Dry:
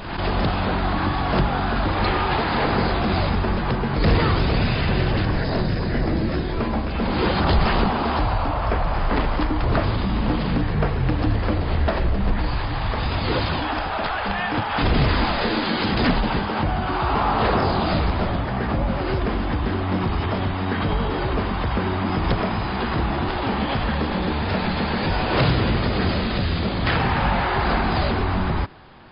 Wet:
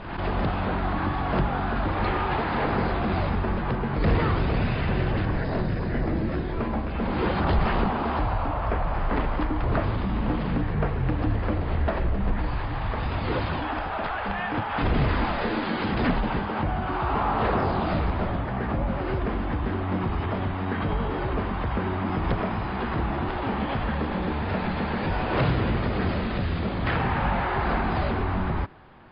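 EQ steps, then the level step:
low-pass filter 2,600 Hz 12 dB per octave
−4.0 dB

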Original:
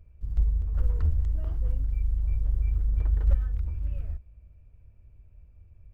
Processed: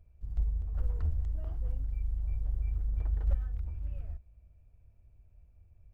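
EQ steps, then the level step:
parametric band 730 Hz +6.5 dB 0.42 octaves
−6.5 dB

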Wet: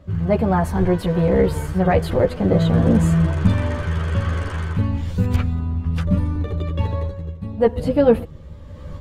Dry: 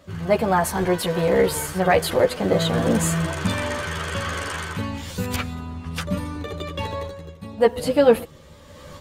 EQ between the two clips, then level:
RIAA equalisation playback
high-shelf EQ 12,000 Hz +9 dB
−2.5 dB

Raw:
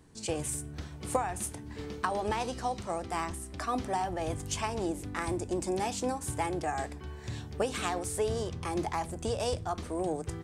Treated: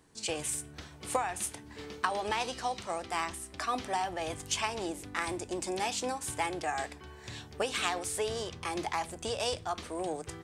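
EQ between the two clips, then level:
low-shelf EQ 300 Hz −10 dB
dynamic equaliser 3,100 Hz, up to +6 dB, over −52 dBFS, Q 0.73
0.0 dB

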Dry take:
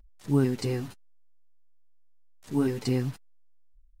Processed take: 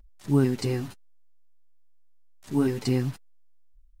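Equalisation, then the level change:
notch filter 480 Hz, Q 12
+2.0 dB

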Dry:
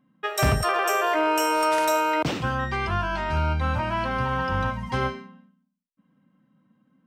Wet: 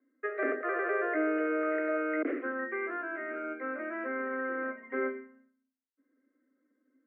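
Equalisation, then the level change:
Chebyshev band-pass filter 260–2,100 Hz, order 5
parametric band 790 Hz −6.5 dB 0.5 octaves
phaser with its sweep stopped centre 380 Hz, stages 4
0.0 dB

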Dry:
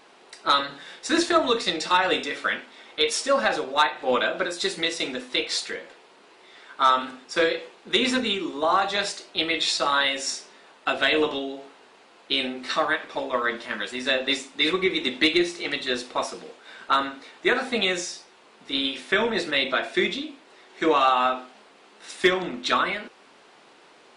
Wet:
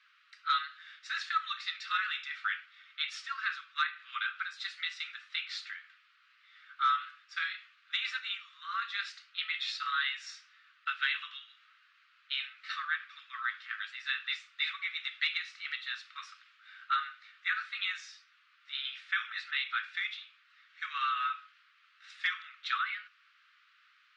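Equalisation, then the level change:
Butterworth high-pass 1,200 Hz 96 dB per octave
high-frequency loss of the air 220 metres
−5.5 dB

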